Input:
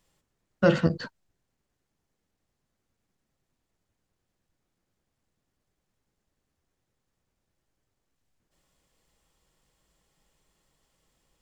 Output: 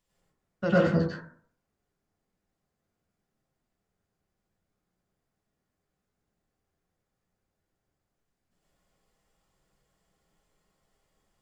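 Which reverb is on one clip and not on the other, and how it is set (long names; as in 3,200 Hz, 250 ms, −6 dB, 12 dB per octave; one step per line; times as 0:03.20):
dense smooth reverb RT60 0.52 s, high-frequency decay 0.35×, pre-delay 85 ms, DRR −7.5 dB
level −9.5 dB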